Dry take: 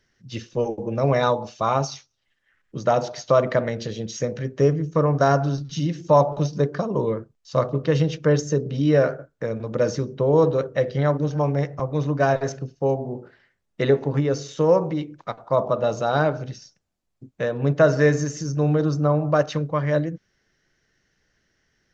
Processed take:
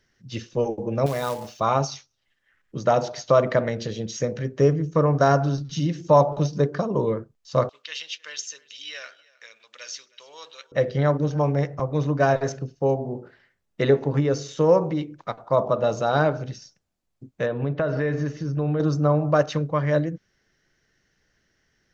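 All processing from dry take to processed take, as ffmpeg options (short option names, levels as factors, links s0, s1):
-filter_complex "[0:a]asettb=1/sr,asplit=3[s0][s1][s2];[s0]atrim=end=1.064[s3];[s1]atrim=start=1.06:end=1.6,asetpts=PTS-STARTPTS,afade=t=in:d=0.004:c=qsin,afade=t=out:st=0.536:d=0.004:c=qsin,acompressor=threshold=0.0178:ratio=1.5:attack=3.2:release=140:knee=1:detection=peak,acrusher=bits=3:mode=log:mix=0:aa=0.000001[s4];[s2]atrim=start=1.596[s5];[s3][s4]acrossfade=d=0.004:c1=hsin:c2=qsin[s6];[s6][s5]acrossfade=d=0.004:c1=qsin:c2=hsin,asettb=1/sr,asplit=3[s7][s8][s9];[s7]atrim=end=7.694[s10];[s8]atrim=start=7.69:end=10.72,asetpts=PTS-STARTPTS,afade=t=in:d=0.004:c=qsin,afade=t=out:st=3.026:d=0.004:c=qsin,highpass=f=2900:t=q:w=1.8,aecho=1:1:314:0.075,atrim=end_sample=133623[s11];[s9]atrim=start=10.716[s12];[s10][s11]acrossfade=d=0.004:c1=hsin:c2=qsin[s13];[s13][s12]acrossfade=d=0.004:c1=qsin:c2=hsin,asettb=1/sr,asplit=3[s14][s15][s16];[s14]atrim=end=17.464[s17];[s15]atrim=start=17.46:end=18.8,asetpts=PTS-STARTPTS,afade=t=in:d=0.004:c=qsin,afade=t=out:st=1.336:d=0.004:c=qsin,lowpass=f=3900:w=0.5412,lowpass=f=3900:w=1.3066,acompressor=threshold=0.1:ratio=6:attack=3.2:release=140:knee=1:detection=peak[s18];[s16]atrim=start=18.796[s19];[s17][s18]acrossfade=d=0.004:c1=hsin:c2=qsin[s20];[s20][s19]acrossfade=d=0.004:c1=qsin:c2=hsin"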